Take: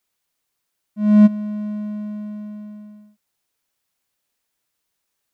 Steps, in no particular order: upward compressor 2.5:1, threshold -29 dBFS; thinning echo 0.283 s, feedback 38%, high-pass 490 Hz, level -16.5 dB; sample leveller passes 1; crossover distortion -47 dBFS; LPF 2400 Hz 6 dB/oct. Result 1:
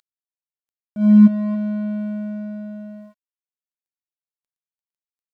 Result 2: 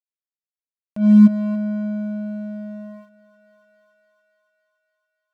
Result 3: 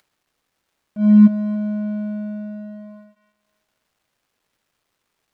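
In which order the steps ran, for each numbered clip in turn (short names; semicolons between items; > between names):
upward compressor > thinning echo > sample leveller > LPF > crossover distortion; LPF > crossover distortion > thinning echo > upward compressor > sample leveller; sample leveller > thinning echo > upward compressor > crossover distortion > LPF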